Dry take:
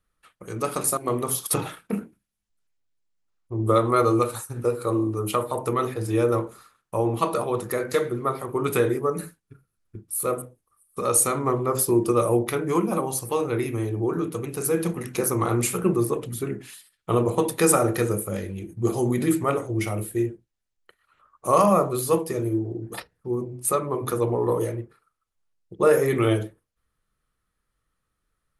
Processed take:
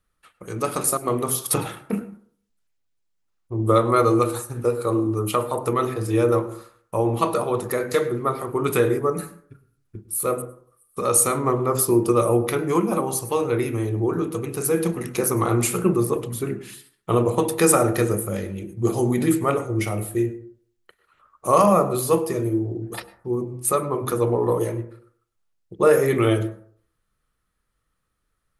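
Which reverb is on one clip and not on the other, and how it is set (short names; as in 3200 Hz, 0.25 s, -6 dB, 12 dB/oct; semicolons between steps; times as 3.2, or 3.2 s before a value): plate-style reverb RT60 0.5 s, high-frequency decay 0.3×, pre-delay 90 ms, DRR 15.5 dB; gain +2 dB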